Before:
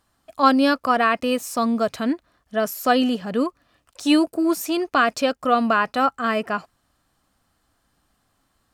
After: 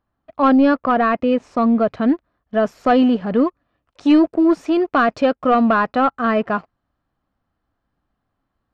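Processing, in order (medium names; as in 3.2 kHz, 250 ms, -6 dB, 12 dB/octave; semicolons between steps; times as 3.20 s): waveshaping leveller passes 2; tape spacing loss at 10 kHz 42 dB, from 2.01 s at 10 kHz 33 dB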